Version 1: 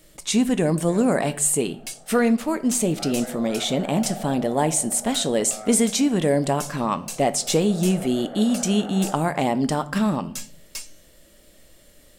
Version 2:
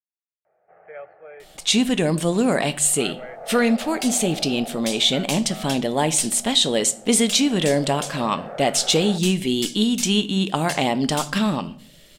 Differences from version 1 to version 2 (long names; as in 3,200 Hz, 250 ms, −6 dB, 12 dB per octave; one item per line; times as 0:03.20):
speech: entry +1.40 s
second sound: entry +2.15 s
master: add parametric band 3,400 Hz +10 dB 1.3 octaves